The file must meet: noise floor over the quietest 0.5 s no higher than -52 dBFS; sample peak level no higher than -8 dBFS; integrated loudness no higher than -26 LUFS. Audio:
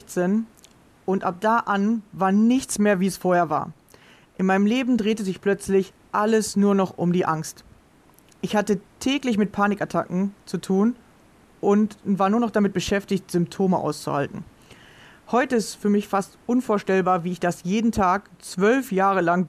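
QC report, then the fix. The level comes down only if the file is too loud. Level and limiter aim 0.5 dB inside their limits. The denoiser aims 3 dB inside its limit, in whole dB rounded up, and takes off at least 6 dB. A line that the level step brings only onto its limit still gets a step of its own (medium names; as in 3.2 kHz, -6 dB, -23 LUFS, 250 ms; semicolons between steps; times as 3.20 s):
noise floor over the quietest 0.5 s -55 dBFS: pass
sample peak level -9.0 dBFS: pass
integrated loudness -22.5 LUFS: fail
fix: trim -4 dB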